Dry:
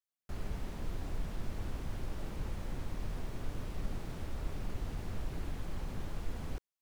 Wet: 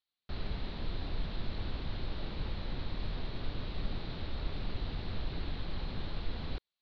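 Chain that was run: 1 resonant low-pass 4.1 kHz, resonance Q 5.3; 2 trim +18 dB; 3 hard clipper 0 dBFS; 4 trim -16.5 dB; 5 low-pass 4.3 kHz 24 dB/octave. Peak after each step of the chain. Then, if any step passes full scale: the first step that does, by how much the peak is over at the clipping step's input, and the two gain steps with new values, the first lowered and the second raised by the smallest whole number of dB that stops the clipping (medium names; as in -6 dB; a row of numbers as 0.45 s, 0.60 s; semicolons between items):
-23.0 dBFS, -5.0 dBFS, -5.0 dBFS, -21.5 dBFS, -21.5 dBFS; nothing clips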